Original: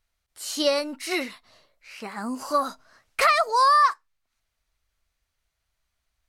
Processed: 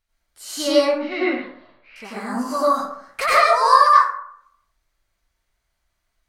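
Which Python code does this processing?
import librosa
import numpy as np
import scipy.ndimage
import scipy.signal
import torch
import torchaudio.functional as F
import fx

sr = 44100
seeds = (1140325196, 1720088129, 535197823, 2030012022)

p1 = fx.cheby2_lowpass(x, sr, hz=8100.0, order=4, stop_db=50, at=(0.75, 1.96))
p2 = np.clip(10.0 ** (13.5 / 20.0) * p1, -1.0, 1.0) / 10.0 ** (13.5 / 20.0)
p3 = p1 + (p2 * librosa.db_to_amplitude(-8.5))
p4 = fx.rev_plate(p3, sr, seeds[0], rt60_s=0.67, hf_ratio=0.45, predelay_ms=80, drr_db=-8.0)
y = p4 * librosa.db_to_amplitude(-6.0)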